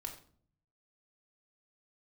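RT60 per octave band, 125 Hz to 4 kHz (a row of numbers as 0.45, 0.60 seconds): 1.1, 0.80, 0.55, 0.45, 0.35, 0.35 seconds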